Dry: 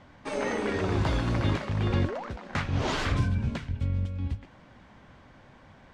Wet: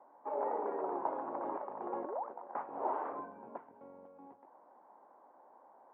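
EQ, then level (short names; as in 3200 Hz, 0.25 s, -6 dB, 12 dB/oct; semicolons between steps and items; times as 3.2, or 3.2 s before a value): HPF 350 Hz 24 dB/oct; ladder low-pass 1000 Hz, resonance 60%; air absorption 210 m; +3.0 dB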